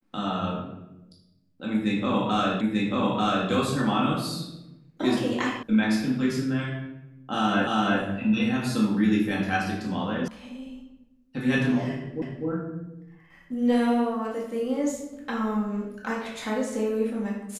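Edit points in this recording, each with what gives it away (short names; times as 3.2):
2.61 repeat of the last 0.89 s
5.63 sound cut off
7.67 repeat of the last 0.34 s
10.28 sound cut off
12.22 repeat of the last 0.25 s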